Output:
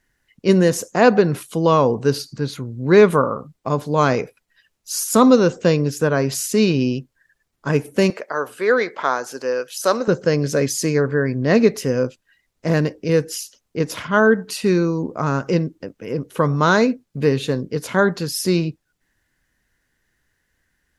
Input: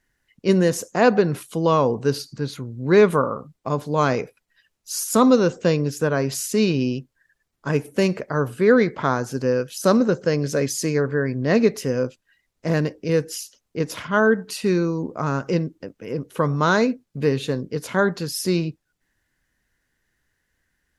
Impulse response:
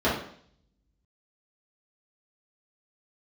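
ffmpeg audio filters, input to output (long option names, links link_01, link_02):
-filter_complex "[0:a]asettb=1/sr,asplit=3[link_01][link_02][link_03];[link_01]atrim=end=8.104[link_04];[link_02]atrim=start=8.1:end=10.08,asetpts=PTS-STARTPTS,afade=type=in:duration=0.004:curve=qsin,afade=type=out:start_time=1.976:duration=0.004:curve=qsin,highpass=520[link_05];[link_03]atrim=start=10.076[link_06];[link_04][link_05]acrossfade=duration=0.004:curve1=hsin:curve2=qsin[link_07];[link_07][link_06]acrossfade=duration=0.004:curve1=qsin:curve2=hsin,volume=3dB"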